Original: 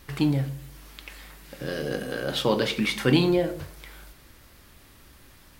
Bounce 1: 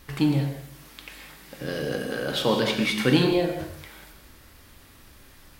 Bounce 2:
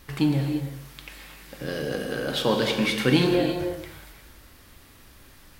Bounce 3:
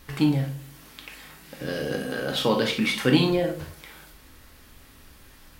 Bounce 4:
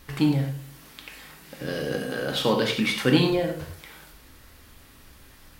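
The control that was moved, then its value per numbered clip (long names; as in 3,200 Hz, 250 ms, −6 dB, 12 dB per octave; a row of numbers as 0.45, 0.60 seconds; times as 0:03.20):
reverb whose tail is shaped and stops, gate: 230, 370, 80, 120 milliseconds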